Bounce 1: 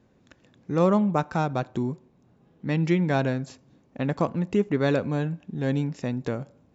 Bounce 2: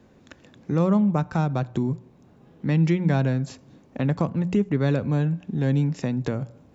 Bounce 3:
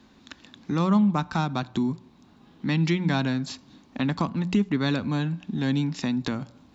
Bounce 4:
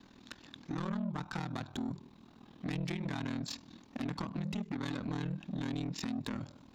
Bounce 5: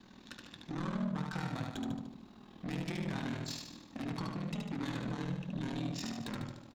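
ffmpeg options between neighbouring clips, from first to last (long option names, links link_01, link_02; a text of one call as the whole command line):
ffmpeg -i in.wav -filter_complex "[0:a]bandreject=frequency=60:width_type=h:width=6,bandreject=frequency=120:width_type=h:width=6,bandreject=frequency=180:width_type=h:width=6,acrossover=split=190[link_01][link_02];[link_02]acompressor=threshold=-40dB:ratio=2[link_03];[link_01][link_03]amix=inputs=2:normalize=0,volume=7.5dB" out.wav
ffmpeg -i in.wav -af "equalizer=frequency=125:width_type=o:width=1:gain=-8,equalizer=frequency=250:width_type=o:width=1:gain=5,equalizer=frequency=500:width_type=o:width=1:gain=-10,equalizer=frequency=1000:width_type=o:width=1:gain=5,equalizer=frequency=4000:width_type=o:width=1:gain=11" out.wav
ffmpeg -i in.wav -af "acompressor=threshold=-27dB:ratio=4,asoftclip=type=tanh:threshold=-30dB,aeval=exprs='val(0)*sin(2*PI*20*n/s)':channel_layout=same" out.wav
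ffmpeg -i in.wav -filter_complex "[0:a]flanger=delay=5.3:depth=1.2:regen=-71:speed=0.34:shape=triangular,asoftclip=type=tanh:threshold=-38.5dB,asplit=2[link_01][link_02];[link_02]aecho=0:1:74|148|222|296|370|444|518:0.668|0.334|0.167|0.0835|0.0418|0.0209|0.0104[link_03];[link_01][link_03]amix=inputs=2:normalize=0,volume=4.5dB" out.wav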